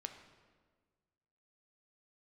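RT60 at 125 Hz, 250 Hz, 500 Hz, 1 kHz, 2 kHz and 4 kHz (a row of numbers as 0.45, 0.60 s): 1.9, 1.8, 1.7, 1.4, 1.3, 1.1 s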